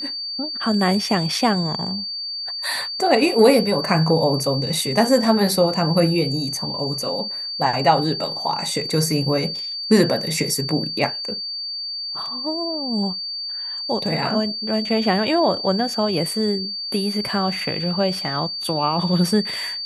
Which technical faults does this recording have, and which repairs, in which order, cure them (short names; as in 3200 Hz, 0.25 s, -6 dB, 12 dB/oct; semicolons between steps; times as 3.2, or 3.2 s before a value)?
tone 4600 Hz -26 dBFS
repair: notch 4600 Hz, Q 30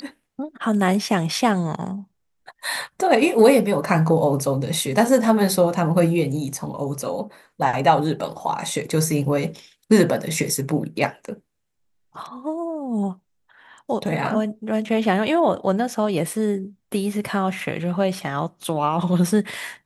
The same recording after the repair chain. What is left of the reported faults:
none